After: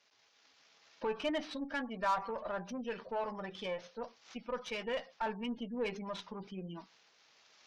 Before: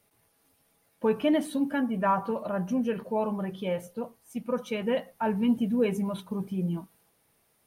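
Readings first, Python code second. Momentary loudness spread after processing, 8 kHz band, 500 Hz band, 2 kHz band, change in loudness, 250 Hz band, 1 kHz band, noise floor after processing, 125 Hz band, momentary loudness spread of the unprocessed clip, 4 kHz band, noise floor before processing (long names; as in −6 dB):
10 LU, −8.0 dB, −9.0 dB, −3.0 dB, −10.0 dB, −14.5 dB, −6.0 dB, −69 dBFS, −16.0 dB, 8 LU, −1.5 dB, −69 dBFS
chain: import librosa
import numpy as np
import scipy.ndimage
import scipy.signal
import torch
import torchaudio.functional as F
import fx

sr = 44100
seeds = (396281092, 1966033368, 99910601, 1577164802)

p1 = fx.cvsd(x, sr, bps=32000)
p2 = fx.recorder_agc(p1, sr, target_db=-21.5, rise_db_per_s=8.0, max_gain_db=30)
p3 = fx.highpass(p2, sr, hz=1100.0, slope=6)
p4 = fx.spec_gate(p3, sr, threshold_db=-25, keep='strong')
p5 = 10.0 ** (-32.0 / 20.0) * np.tanh(p4 / 10.0 ** (-32.0 / 20.0))
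p6 = p4 + F.gain(torch.from_numpy(p5), -3.5).numpy()
p7 = fx.cheby_harmonics(p6, sr, harmonics=(8,), levels_db=(-25,), full_scale_db=-15.5)
y = F.gain(torch.from_numpy(p7), -5.0).numpy()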